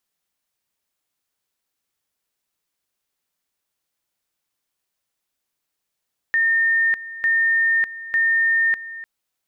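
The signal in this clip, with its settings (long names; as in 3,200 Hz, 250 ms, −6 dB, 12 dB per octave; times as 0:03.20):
tone at two levels in turn 1,820 Hz −15 dBFS, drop 16 dB, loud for 0.60 s, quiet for 0.30 s, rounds 3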